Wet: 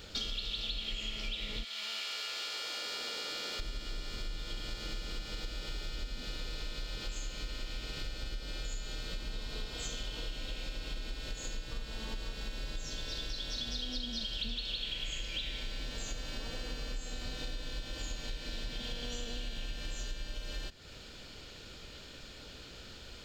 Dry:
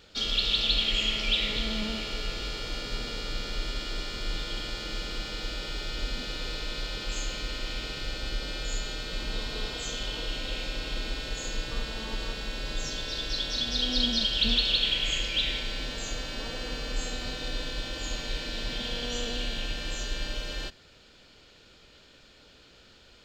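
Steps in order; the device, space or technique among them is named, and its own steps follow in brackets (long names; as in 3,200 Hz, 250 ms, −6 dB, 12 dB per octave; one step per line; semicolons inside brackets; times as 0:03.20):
0:01.63–0:03.59: high-pass filter 1,300 Hz → 360 Hz 12 dB per octave
ASMR close-microphone chain (low-shelf EQ 170 Hz +6 dB; downward compressor 6 to 1, threshold −41 dBFS, peak gain reduction 21 dB; high-shelf EQ 7,000 Hz +7 dB)
level +4 dB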